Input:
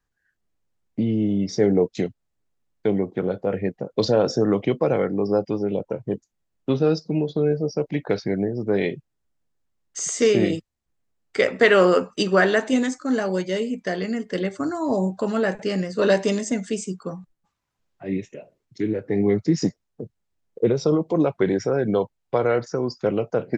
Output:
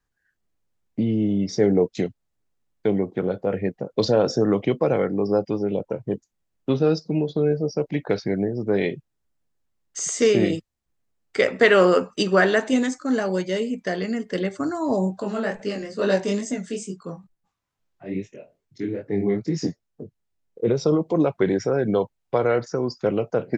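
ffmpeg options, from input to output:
-filter_complex "[0:a]asplit=3[s0][s1][s2];[s0]afade=t=out:st=15.19:d=0.02[s3];[s1]flanger=delay=19.5:depth=6.2:speed=2.3,afade=t=in:st=15.19:d=0.02,afade=t=out:st=20.67:d=0.02[s4];[s2]afade=t=in:st=20.67:d=0.02[s5];[s3][s4][s5]amix=inputs=3:normalize=0"

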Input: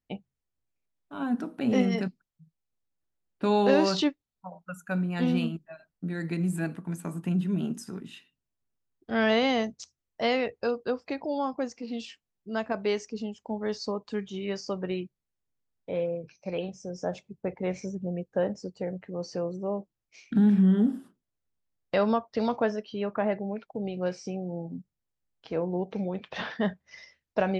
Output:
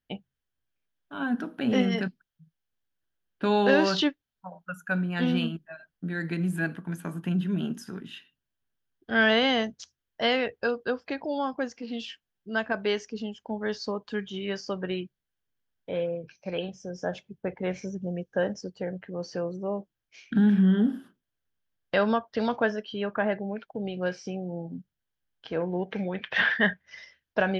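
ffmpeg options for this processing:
-filter_complex "[0:a]asettb=1/sr,asplit=3[s0][s1][s2];[s0]atrim=end=17.924[s3];[s1]atrim=start=17.92:end=18.61,asetpts=PTS-STARTPTS,afade=t=in:d=0.004:c=qsin,afade=t=out:st=0.686:d=0.004:c=qsin,equalizer=f=5900:t=o:w=0.37:g=10[s4];[s2]atrim=start=18.606[s5];[s3][s4]acrossfade=d=0.004:c1=hsin:c2=qsin[s6];[s6][s5]acrossfade=d=0.004:c1=qsin:c2=hsin,asettb=1/sr,asplit=3[s7][s8][s9];[s7]atrim=end=25.604[s10];[s8]atrim=start=25.6:end=26.86,asetpts=PTS-STARTPTS,afade=t=in:d=0.004:c=qsin,afade=t=out:st=1.256:d=0.004:c=qsin,equalizer=f=2000:t=o:w=0.81:g=11[s11];[s9]atrim=start=26.856[s12];[s10][s11]acrossfade=d=0.004:c1=hsin:c2=qsin[s13];[s13][s12]acrossfade=d=0.004:c1=qsin:c2=hsin,equalizer=f=1600:t=o:w=0.33:g=10,equalizer=f=3150:t=o:w=0.33:g=8,equalizer=f=8000:t=o:w=0.33:g=-9"

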